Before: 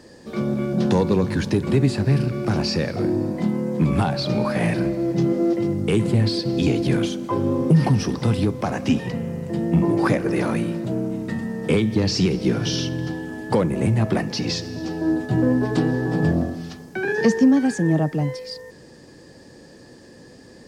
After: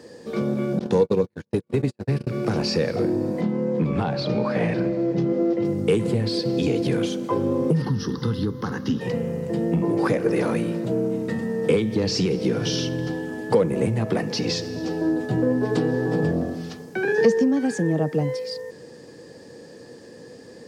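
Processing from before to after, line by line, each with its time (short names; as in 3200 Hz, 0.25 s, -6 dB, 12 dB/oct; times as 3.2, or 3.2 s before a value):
0.79–2.27 gate -19 dBFS, range -52 dB
3.41–5.65 air absorption 110 m
7.82–9.01 fixed phaser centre 2400 Hz, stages 6
whole clip: compressor 2.5:1, threshold -20 dBFS; HPF 100 Hz; bell 470 Hz +10 dB 0.24 oct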